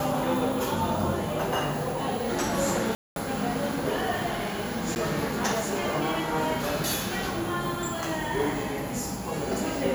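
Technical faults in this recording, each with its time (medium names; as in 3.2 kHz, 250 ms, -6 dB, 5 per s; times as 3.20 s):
2.95–3.16 s: dropout 212 ms
4.95–4.96 s: dropout 9.8 ms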